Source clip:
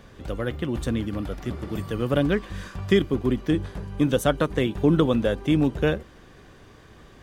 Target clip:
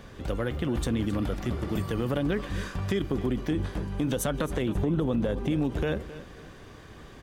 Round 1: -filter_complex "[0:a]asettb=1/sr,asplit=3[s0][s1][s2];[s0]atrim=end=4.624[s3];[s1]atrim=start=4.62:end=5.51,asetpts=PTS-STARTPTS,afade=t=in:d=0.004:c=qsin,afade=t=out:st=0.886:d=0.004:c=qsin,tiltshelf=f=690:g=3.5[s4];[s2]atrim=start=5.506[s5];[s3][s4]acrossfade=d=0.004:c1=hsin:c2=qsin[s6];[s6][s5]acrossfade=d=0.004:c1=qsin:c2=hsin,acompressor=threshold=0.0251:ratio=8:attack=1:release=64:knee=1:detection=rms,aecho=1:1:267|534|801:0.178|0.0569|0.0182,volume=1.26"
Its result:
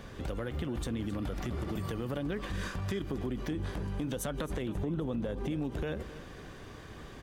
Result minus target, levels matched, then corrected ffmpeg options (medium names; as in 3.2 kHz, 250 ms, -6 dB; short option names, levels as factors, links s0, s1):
compression: peak gain reduction +7.5 dB
-filter_complex "[0:a]asettb=1/sr,asplit=3[s0][s1][s2];[s0]atrim=end=4.624[s3];[s1]atrim=start=4.62:end=5.51,asetpts=PTS-STARTPTS,afade=t=in:d=0.004:c=qsin,afade=t=out:st=0.886:d=0.004:c=qsin,tiltshelf=f=690:g=3.5[s4];[s2]atrim=start=5.506[s5];[s3][s4]acrossfade=d=0.004:c1=hsin:c2=qsin[s6];[s6][s5]acrossfade=d=0.004:c1=qsin:c2=hsin,acompressor=threshold=0.0668:ratio=8:attack=1:release=64:knee=1:detection=rms,aecho=1:1:267|534|801:0.178|0.0569|0.0182,volume=1.26"